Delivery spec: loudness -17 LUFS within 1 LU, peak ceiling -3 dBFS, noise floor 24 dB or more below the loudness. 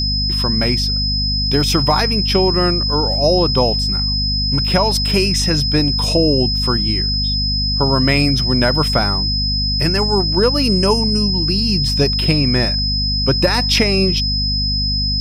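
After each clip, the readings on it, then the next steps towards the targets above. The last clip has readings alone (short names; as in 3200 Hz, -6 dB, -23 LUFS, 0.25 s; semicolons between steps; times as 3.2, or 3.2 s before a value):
hum 50 Hz; harmonics up to 250 Hz; hum level -18 dBFS; steady tone 5100 Hz; tone level -18 dBFS; loudness -15.0 LUFS; peak -1.5 dBFS; loudness target -17.0 LUFS
-> notches 50/100/150/200/250 Hz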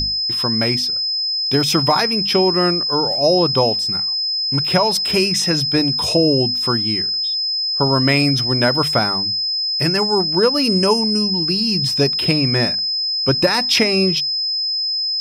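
hum none; steady tone 5100 Hz; tone level -18 dBFS
-> notch 5100 Hz, Q 30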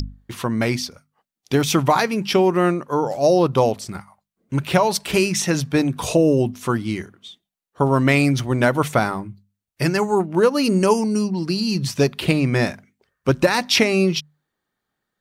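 steady tone none; loudness -19.5 LUFS; peak -3.0 dBFS; loudness target -17.0 LUFS
-> gain +2.5 dB; limiter -3 dBFS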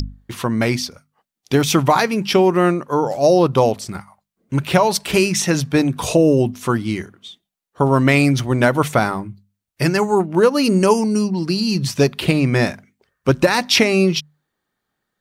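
loudness -17.5 LUFS; peak -3.0 dBFS; noise floor -81 dBFS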